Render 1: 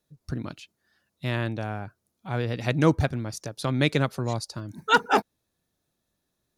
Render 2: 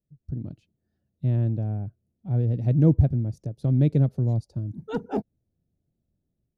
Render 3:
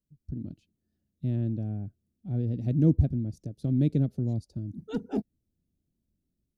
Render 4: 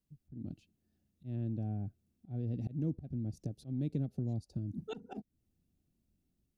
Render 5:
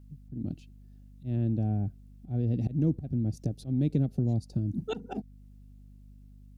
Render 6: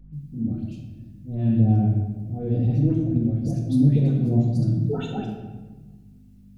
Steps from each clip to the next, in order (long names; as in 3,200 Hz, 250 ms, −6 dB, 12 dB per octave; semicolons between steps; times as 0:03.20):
drawn EQ curve 130 Hz 0 dB, 690 Hz −15 dB, 1,100 Hz −30 dB; automatic gain control gain up to 7.5 dB
octave-band graphic EQ 125/250/500/1,000/2,000 Hz −7/+3/−5/−11/−4 dB
volume swells 296 ms; downward compressor 3 to 1, threshold −36 dBFS, peak gain reduction 12.5 dB; hollow resonant body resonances 760/2,700 Hz, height 8 dB; level +1 dB
mains hum 50 Hz, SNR 20 dB; level +8.5 dB
flanger 0.85 Hz, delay 5.6 ms, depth 4.3 ms, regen +39%; all-pass dispersion highs, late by 134 ms, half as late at 1,400 Hz; convolution reverb RT60 1.3 s, pre-delay 4 ms, DRR −1.5 dB; level +6 dB